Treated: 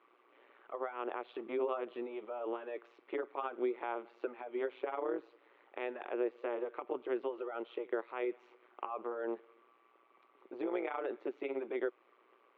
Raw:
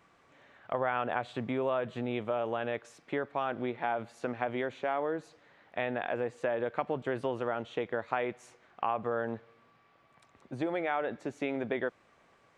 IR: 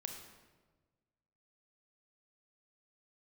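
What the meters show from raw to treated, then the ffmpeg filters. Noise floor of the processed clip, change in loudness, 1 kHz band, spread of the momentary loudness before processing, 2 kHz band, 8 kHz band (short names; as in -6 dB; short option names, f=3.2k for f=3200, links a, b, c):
-69 dBFS, -5.5 dB, -8.0 dB, 6 LU, -9.5 dB, n/a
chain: -af "alimiter=limit=-23.5dB:level=0:latency=1:release=170,tremolo=f=120:d=0.857,highpass=f=320:w=0.5412,highpass=f=320:w=1.3066,equalizer=f=370:t=q:w=4:g=8,equalizer=f=680:t=q:w=4:g=-5,equalizer=f=1.2k:t=q:w=4:g=3,equalizer=f=1.7k:t=q:w=4:g=-7,lowpass=f=3.1k:w=0.5412,lowpass=f=3.1k:w=1.3066,volume=1dB"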